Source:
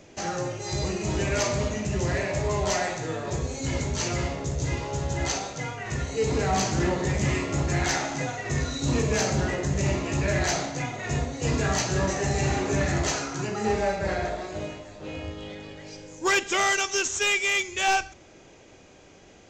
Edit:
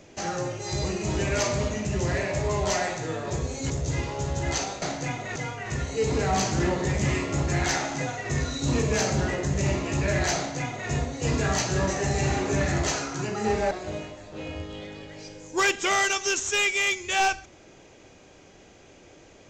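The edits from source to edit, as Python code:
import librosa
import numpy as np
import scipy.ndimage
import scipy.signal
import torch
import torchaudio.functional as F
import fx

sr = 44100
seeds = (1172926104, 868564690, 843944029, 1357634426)

y = fx.edit(x, sr, fx.cut(start_s=3.7, length_s=0.74),
    fx.duplicate(start_s=10.56, length_s=0.54, to_s=5.56),
    fx.cut(start_s=13.91, length_s=0.48), tone=tone)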